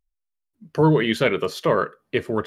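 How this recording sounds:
background noise floor −81 dBFS
spectral slope −5.0 dB per octave

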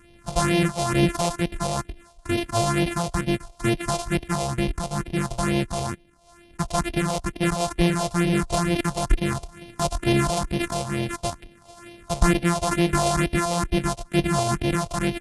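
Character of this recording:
a buzz of ramps at a fixed pitch in blocks of 128 samples
phaser sweep stages 4, 2.2 Hz, lowest notch 270–1,300 Hz
AAC

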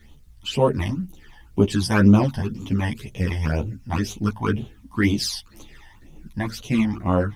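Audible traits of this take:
phaser sweep stages 12, 2 Hz, lowest notch 400–1,700 Hz
a quantiser's noise floor 12 bits, dither none
a shimmering, thickened sound

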